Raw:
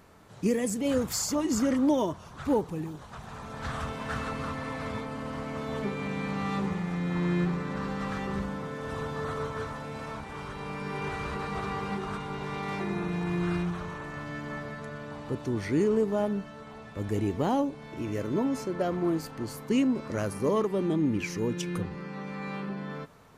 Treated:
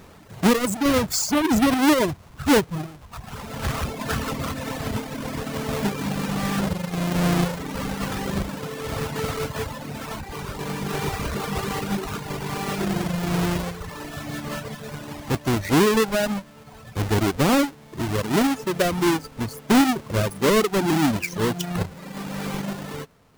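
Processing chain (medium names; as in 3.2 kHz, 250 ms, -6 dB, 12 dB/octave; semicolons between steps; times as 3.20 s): square wave that keeps the level; reverb removal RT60 1.7 s; trim +5 dB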